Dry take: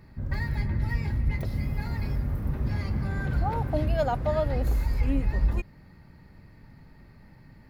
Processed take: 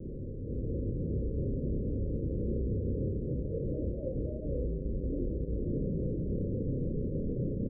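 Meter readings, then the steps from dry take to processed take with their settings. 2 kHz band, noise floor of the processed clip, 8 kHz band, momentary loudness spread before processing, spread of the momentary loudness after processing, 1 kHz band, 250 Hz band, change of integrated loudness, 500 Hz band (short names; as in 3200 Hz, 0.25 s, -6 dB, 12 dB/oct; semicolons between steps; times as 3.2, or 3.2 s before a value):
under -40 dB, -39 dBFS, n/a, 5 LU, 3 LU, under -40 dB, 0.0 dB, -6.0 dB, -3.0 dB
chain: infinite clipping; steep low-pass 540 Hz 96 dB/oct; low shelf 280 Hz -8 dB; AGC gain up to 8 dB; doubler 31 ms -3 dB; gain -7.5 dB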